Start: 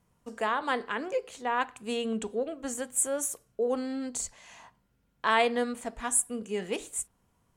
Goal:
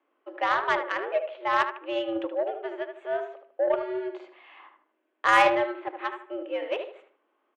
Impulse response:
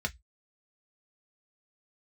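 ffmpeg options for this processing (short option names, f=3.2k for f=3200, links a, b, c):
-filter_complex "[0:a]asplit=2[a][b];[b]adelay=76,lowpass=f=2.2k:p=1,volume=-6dB,asplit=2[c][d];[d]adelay=76,lowpass=f=2.2k:p=1,volume=0.38,asplit=2[e][f];[f]adelay=76,lowpass=f=2.2k:p=1,volume=0.38,asplit=2[g][h];[h]adelay=76,lowpass=f=2.2k:p=1,volume=0.38,asplit=2[i][j];[j]adelay=76,lowpass=f=2.2k:p=1,volume=0.38[k];[a][c][e][g][i][k]amix=inputs=6:normalize=0,highpass=f=220:t=q:w=0.5412,highpass=f=220:t=q:w=1.307,lowpass=f=3k:t=q:w=0.5176,lowpass=f=3k:t=q:w=0.7071,lowpass=f=3k:t=q:w=1.932,afreqshift=110,aeval=exprs='0.266*(cos(1*acos(clip(val(0)/0.266,-1,1)))-cos(1*PI/2))+0.0133*(cos(7*acos(clip(val(0)/0.266,-1,1)))-cos(7*PI/2))':c=same,volume=5dB"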